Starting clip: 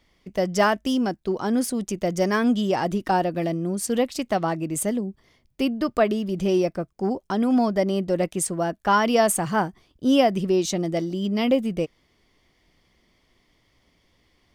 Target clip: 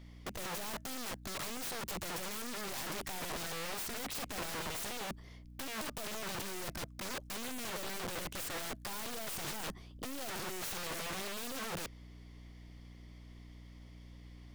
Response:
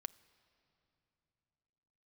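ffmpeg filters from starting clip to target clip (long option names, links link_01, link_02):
-af "aeval=exprs='val(0)+0.00251*(sin(2*PI*60*n/s)+sin(2*PI*2*60*n/s)/2+sin(2*PI*3*60*n/s)/3+sin(2*PI*4*60*n/s)/4+sin(2*PI*5*60*n/s)/5)':channel_layout=same,aeval=exprs='(tanh(25.1*val(0)+0.15)-tanh(0.15))/25.1':channel_layout=same,aeval=exprs='(mod(59.6*val(0)+1,2)-1)/59.6':channel_layout=same,volume=1dB"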